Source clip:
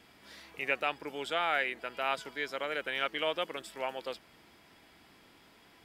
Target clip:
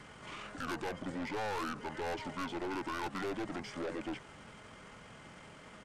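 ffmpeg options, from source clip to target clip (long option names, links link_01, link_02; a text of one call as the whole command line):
ffmpeg -i in.wav -filter_complex "[0:a]acrossover=split=2800[link_01][link_02];[link_02]acompressor=threshold=-51dB:ratio=4:attack=1:release=60[link_03];[link_01][link_03]amix=inputs=2:normalize=0,aeval=exprs='(tanh(141*val(0)+0.15)-tanh(0.15))/141':channel_layout=same,asetrate=27781,aresample=44100,atempo=1.5874,volume=8dB" out.wav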